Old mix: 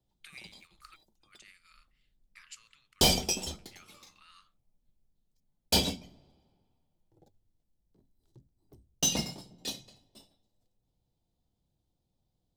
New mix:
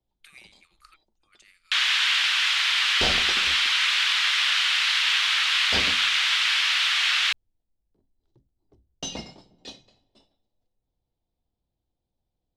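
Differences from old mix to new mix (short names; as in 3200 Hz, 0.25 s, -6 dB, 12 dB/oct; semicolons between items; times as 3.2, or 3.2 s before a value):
first sound: unmuted; second sound: add air absorption 140 m; master: add bell 150 Hz -7 dB 1.3 oct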